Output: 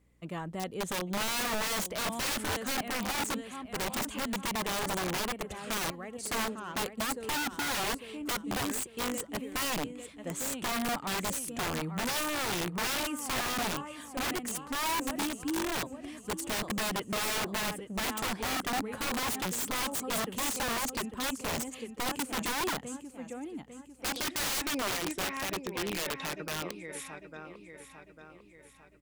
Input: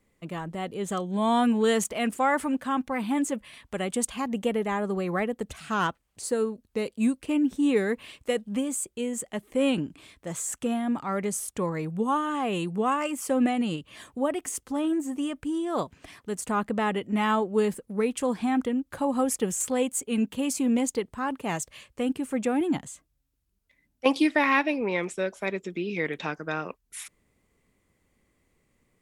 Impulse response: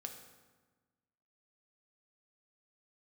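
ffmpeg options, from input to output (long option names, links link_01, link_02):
-af "aecho=1:1:849|1698|2547|3396|4245:0.251|0.116|0.0532|0.0244|0.0112,aeval=exprs='(mod(15*val(0)+1,2)-1)/15':channel_layout=same,aeval=exprs='val(0)+0.000631*(sin(2*PI*60*n/s)+sin(2*PI*2*60*n/s)/2+sin(2*PI*3*60*n/s)/3+sin(2*PI*4*60*n/s)/4+sin(2*PI*5*60*n/s)/5)':channel_layout=same,volume=-3.5dB"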